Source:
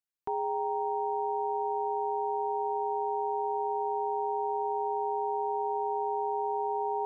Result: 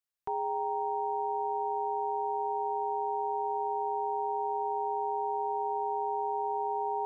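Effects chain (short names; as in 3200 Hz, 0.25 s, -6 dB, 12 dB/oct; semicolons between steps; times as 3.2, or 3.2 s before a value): bell 280 Hz -10 dB 0.65 oct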